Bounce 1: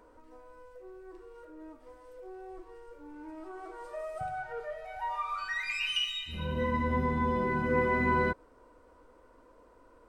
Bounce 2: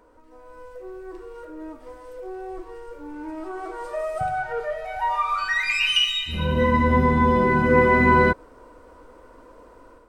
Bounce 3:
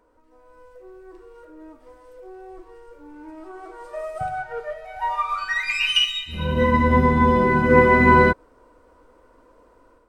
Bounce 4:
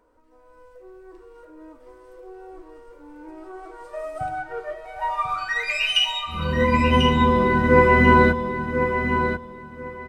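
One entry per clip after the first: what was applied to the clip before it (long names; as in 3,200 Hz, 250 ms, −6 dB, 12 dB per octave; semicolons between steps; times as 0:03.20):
automatic gain control gain up to 9 dB; level +2 dB
expander for the loud parts 1.5 to 1, over −33 dBFS; level +3.5 dB
repeating echo 1,042 ms, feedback 22%, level −7.5 dB; level −1 dB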